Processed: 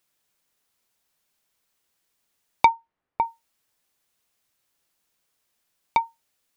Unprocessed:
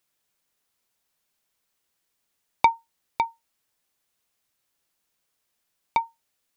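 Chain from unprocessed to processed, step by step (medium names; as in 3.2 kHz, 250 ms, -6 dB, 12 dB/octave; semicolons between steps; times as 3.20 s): 2.68–3.23 s: low-pass 2.1 kHz -> 1.3 kHz 12 dB/octave; trim +2 dB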